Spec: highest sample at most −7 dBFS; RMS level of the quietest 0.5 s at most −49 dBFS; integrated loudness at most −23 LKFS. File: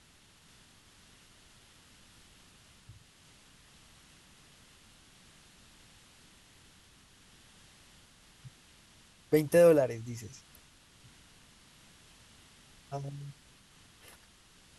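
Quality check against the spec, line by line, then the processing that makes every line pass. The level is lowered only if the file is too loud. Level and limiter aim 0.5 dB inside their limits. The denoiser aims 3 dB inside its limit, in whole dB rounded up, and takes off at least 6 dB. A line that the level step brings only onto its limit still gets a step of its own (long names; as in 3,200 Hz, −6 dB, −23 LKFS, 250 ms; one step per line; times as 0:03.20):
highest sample −13.0 dBFS: in spec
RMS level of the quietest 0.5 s −61 dBFS: in spec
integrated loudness −28.5 LKFS: in spec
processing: no processing needed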